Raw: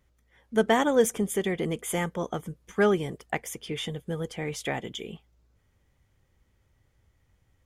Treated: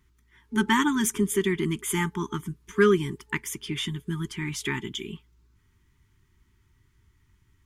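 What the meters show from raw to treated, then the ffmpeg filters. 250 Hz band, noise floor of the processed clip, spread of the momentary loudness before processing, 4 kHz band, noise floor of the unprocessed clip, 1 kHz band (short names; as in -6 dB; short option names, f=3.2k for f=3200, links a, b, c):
+3.5 dB, -66 dBFS, 13 LU, +3.5 dB, -69 dBFS, +0.5 dB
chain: -af "afftfilt=real='re*(1-between(b*sr/4096,420,870))':imag='im*(1-between(b*sr/4096,420,870))':win_size=4096:overlap=0.75,volume=3.5dB"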